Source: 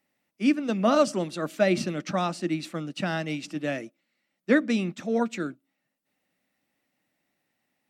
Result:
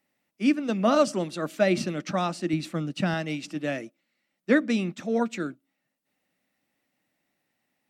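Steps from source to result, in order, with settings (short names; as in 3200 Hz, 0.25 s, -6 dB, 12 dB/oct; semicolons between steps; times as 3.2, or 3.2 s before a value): 2.53–3.14 low shelf 190 Hz +9 dB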